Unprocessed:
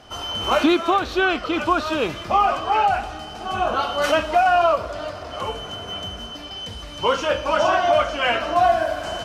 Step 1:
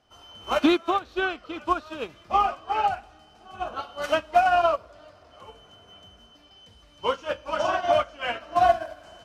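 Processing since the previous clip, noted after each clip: upward expansion 2.5:1, over -26 dBFS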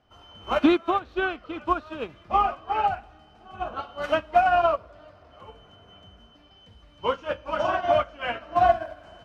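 tone controls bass +4 dB, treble -11 dB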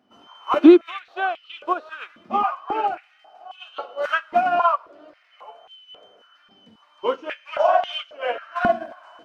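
wow and flutter 27 cents; step-sequenced high-pass 3.7 Hz 230–3000 Hz; trim -1 dB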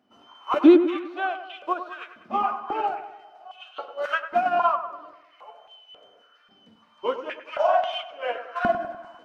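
feedback echo behind a low-pass 99 ms, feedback 50%, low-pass 2 kHz, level -10 dB; trim -3.5 dB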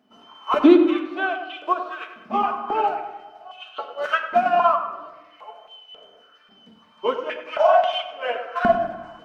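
reverberation RT60 0.95 s, pre-delay 5 ms, DRR 6 dB; trim +3 dB

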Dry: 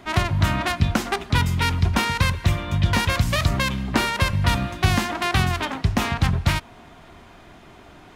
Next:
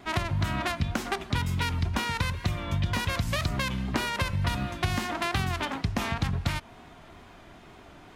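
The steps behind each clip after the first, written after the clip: compression, threshold -20 dBFS, peak gain reduction 8 dB; wow and flutter 50 cents; trim -3.5 dB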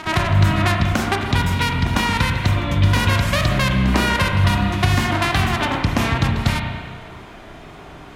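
pre-echo 100 ms -13 dB; spring tank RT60 1.7 s, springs 31/40 ms, chirp 45 ms, DRR 2 dB; trim +8.5 dB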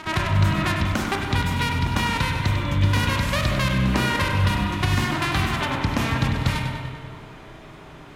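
band-stop 700 Hz, Q 12; two-band feedback delay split 1.2 kHz, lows 193 ms, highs 98 ms, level -8.5 dB; trim -4.5 dB

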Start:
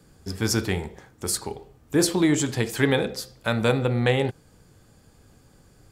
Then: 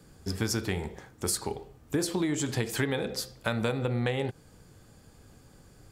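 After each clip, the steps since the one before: compression 12:1, threshold -25 dBFS, peak gain reduction 10.5 dB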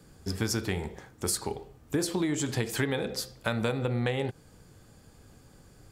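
no audible change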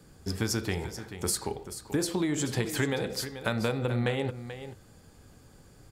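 delay 435 ms -11.5 dB

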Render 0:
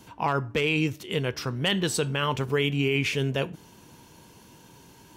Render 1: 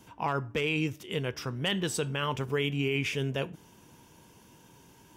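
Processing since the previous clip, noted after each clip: band-stop 4.2 kHz, Q 7.6; trim -4.5 dB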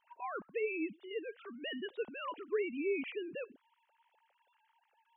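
formants replaced by sine waves; trim -8 dB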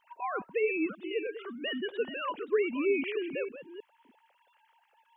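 chunks repeated in reverse 317 ms, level -11 dB; trim +6.5 dB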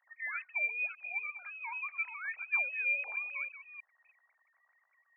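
frequency inversion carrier 2.8 kHz; steep high-pass 650 Hz 36 dB/octave; trim -4.5 dB

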